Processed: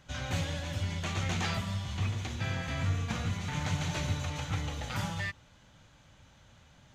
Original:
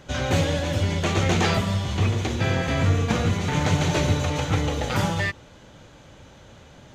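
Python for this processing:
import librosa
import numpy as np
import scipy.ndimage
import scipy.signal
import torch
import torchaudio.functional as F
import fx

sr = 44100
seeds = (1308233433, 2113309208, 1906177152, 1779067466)

y = fx.peak_eq(x, sr, hz=410.0, db=-10.5, octaves=1.3)
y = F.gain(torch.from_numpy(y), -9.0).numpy()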